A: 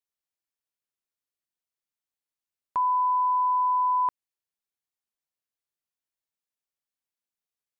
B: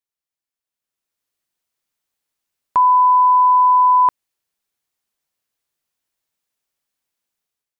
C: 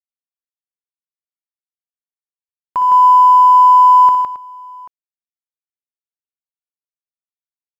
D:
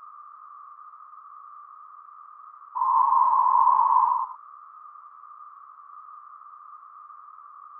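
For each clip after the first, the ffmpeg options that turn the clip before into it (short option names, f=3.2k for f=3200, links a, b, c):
-af "dynaudnorm=f=670:g=3:m=11.5dB"
-af "aeval=exprs='sgn(val(0))*max(abs(val(0))-0.00841,0)':c=same,aecho=1:1:60|124|160|270|787:0.335|0.188|0.631|0.188|0.112,volume=-2.5dB"
-af "afftfilt=real='re*gte(hypot(re,im),0.708)':imag='im*gte(hypot(re,im),0.708)':win_size=1024:overlap=0.75,aeval=exprs='val(0)+0.0282*sin(2*PI*1200*n/s)':c=same,afftfilt=real='hypot(re,im)*cos(2*PI*random(0))':imag='hypot(re,im)*sin(2*PI*random(1))':win_size=512:overlap=0.75,volume=-6dB"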